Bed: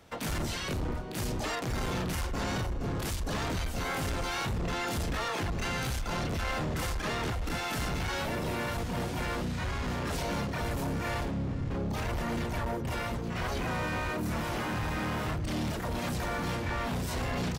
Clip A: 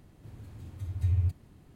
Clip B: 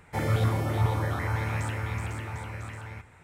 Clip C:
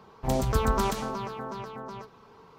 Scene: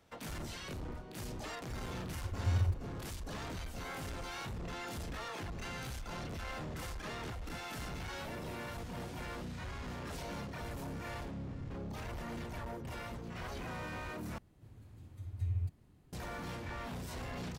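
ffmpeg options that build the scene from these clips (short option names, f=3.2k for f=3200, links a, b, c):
-filter_complex "[1:a]asplit=2[a][b];[0:a]volume=-10dB,asplit=2[c][d];[c]atrim=end=14.384[e];[b]atrim=end=1.75,asetpts=PTS-STARTPTS,volume=-8.5dB[f];[d]atrim=start=16.126[g];[a]atrim=end=1.75,asetpts=PTS-STARTPTS,volume=-5dB,afade=t=in:d=0.004:c=hsin,afade=t=out:st=1.746:d=0.004:c=hsin,adelay=1430[h];[e][f]acrossfade=d=0.004:c1=hsin:c2=hsin[i];[i][g]acrossfade=d=0.004:c1=hsin:c2=hsin[j];[j][h]amix=inputs=2:normalize=0"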